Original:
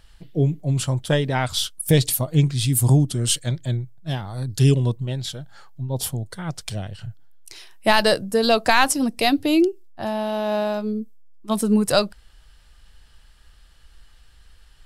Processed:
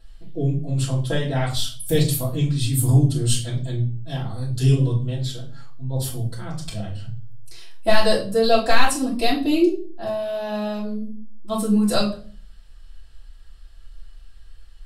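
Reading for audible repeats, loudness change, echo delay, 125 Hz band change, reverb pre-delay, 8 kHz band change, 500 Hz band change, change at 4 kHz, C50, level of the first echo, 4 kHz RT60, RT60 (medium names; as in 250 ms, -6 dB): no echo, -1.0 dB, no echo, 0.0 dB, 3 ms, -3.5 dB, -0.5 dB, -2.5 dB, 8.0 dB, no echo, 0.35 s, 0.40 s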